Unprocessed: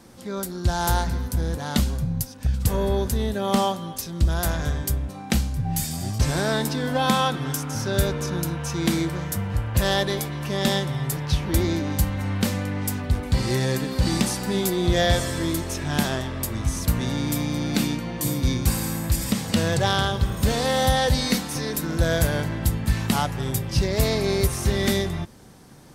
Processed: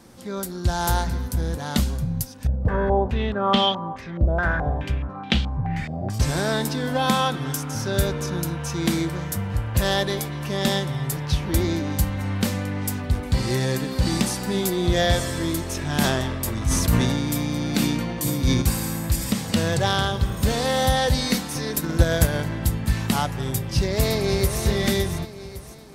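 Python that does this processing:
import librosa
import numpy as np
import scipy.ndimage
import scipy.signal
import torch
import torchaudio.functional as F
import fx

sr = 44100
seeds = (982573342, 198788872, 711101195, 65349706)

y = fx.filter_held_lowpass(x, sr, hz=4.7, low_hz=610.0, high_hz=3300.0, at=(2.47, 6.1))
y = fx.sustainer(y, sr, db_per_s=28.0, at=(15.7, 18.62))
y = fx.transient(y, sr, attack_db=6, sustain_db=-2, at=(21.66, 22.47))
y = fx.echo_throw(y, sr, start_s=23.5, length_s=1.12, ms=560, feedback_pct=40, wet_db=-8.0)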